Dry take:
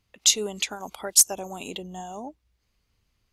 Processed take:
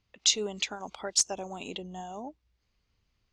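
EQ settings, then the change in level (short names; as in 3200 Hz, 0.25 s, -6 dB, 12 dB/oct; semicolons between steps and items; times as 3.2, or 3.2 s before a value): LPF 6400 Hz 24 dB/oct; -3.0 dB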